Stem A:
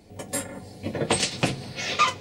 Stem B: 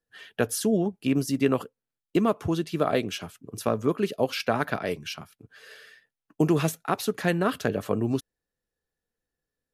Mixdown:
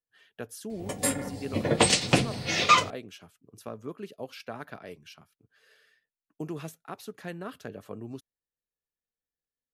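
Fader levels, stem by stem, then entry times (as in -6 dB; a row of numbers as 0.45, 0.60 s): +2.0, -14.0 dB; 0.70, 0.00 s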